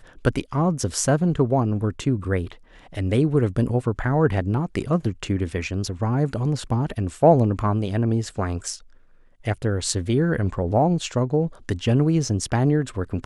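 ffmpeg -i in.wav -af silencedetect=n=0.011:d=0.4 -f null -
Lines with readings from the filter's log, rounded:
silence_start: 8.79
silence_end: 9.45 | silence_duration: 0.66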